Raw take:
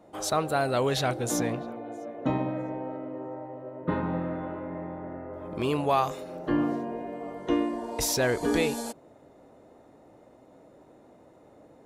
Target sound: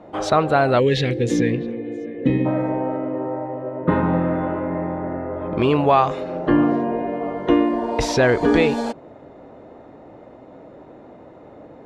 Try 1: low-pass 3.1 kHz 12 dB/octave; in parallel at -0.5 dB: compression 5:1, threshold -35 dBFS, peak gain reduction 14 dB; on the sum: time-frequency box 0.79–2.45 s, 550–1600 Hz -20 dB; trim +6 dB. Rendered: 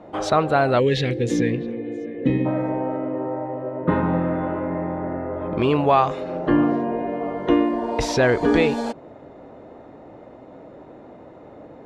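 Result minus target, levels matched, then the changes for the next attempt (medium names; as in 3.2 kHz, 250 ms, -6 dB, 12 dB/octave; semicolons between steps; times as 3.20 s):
compression: peak gain reduction +5.5 dB
change: compression 5:1, threshold -28 dBFS, peak gain reduction 8.5 dB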